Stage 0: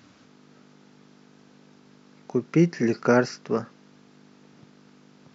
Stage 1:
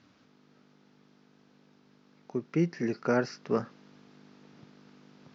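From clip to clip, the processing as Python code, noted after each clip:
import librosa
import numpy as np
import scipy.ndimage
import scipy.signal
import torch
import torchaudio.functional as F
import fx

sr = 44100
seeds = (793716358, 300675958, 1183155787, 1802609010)

y = fx.rider(x, sr, range_db=10, speed_s=0.5)
y = scipy.signal.sosfilt(scipy.signal.butter(4, 5900.0, 'lowpass', fs=sr, output='sos'), y)
y = y * 10.0 ** (-6.0 / 20.0)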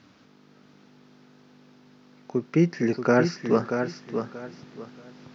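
y = fx.echo_feedback(x, sr, ms=632, feedback_pct=25, wet_db=-7)
y = y * 10.0 ** (6.5 / 20.0)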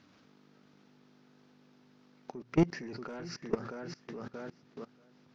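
y = fx.hum_notches(x, sr, base_hz=60, count=2)
y = 10.0 ** (-17.0 / 20.0) * np.tanh(y / 10.0 ** (-17.0 / 20.0))
y = fx.level_steps(y, sr, step_db=21)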